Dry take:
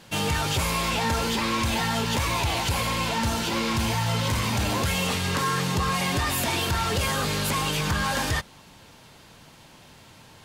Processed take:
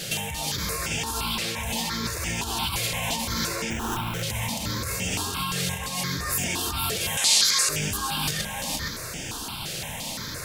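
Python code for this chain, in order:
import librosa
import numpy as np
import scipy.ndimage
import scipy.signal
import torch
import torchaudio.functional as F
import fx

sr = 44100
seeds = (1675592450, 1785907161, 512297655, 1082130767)

y = fx.over_compress(x, sr, threshold_db=-35.0, ratio=-1.0)
y = fx.high_shelf(y, sr, hz=3300.0, db=8.5)
y = y + 10.0 ** (-3.5 / 20.0) * np.pad(y, (int(468 * sr / 1000.0), 0))[:len(y)]
y = fx.sample_hold(y, sr, seeds[0], rate_hz=4600.0, jitter_pct=0, at=(3.7, 4.23))
y = fx.weighting(y, sr, curve='ITU-R 468', at=(7.17, 7.69))
y = fx.phaser_held(y, sr, hz=5.8, low_hz=260.0, high_hz=4100.0)
y = F.gain(torch.from_numpy(y), 5.5).numpy()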